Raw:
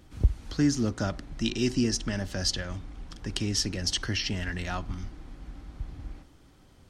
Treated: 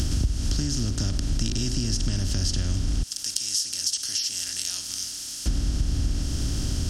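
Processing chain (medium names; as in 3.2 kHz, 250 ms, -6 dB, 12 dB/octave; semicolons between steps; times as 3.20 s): spectral levelling over time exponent 0.4; 3.03–5.46 s: differentiator; compression 5:1, threshold -31 dBFS, peak gain reduction 16 dB; tone controls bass +13 dB, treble +14 dB; trim -2.5 dB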